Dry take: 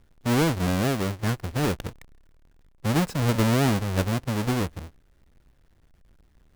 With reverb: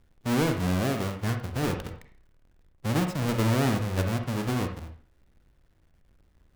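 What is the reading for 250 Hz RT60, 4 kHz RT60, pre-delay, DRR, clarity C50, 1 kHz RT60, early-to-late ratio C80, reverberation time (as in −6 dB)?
0.50 s, 0.40 s, 32 ms, 5.0 dB, 7.5 dB, 0.45 s, 11.5 dB, 0.40 s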